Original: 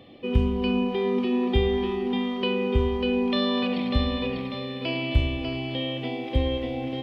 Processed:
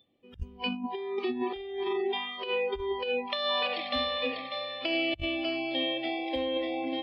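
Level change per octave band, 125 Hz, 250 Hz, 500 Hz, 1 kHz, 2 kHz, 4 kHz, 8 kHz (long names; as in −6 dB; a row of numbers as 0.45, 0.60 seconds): below −20 dB, −9.5 dB, −4.5 dB, −0.5 dB, 0.0 dB, 0.0 dB, can't be measured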